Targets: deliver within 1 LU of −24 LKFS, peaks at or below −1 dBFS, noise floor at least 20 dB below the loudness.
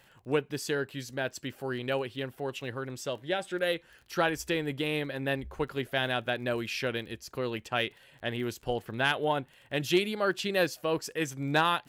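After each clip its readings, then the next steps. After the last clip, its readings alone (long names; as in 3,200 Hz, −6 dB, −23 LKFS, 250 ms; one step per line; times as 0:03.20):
crackle rate 21 per second; integrated loudness −31.5 LKFS; sample peak −13.5 dBFS; target loudness −24.0 LKFS
→ click removal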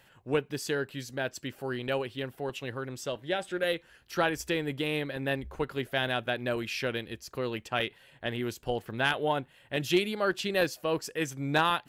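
crackle rate 0.084 per second; integrated loudness −32.0 LKFS; sample peak −13.5 dBFS; target loudness −24.0 LKFS
→ level +8 dB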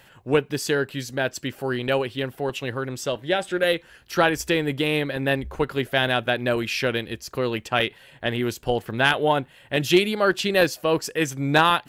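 integrated loudness −24.0 LKFS; sample peak −5.5 dBFS; background noise floor −53 dBFS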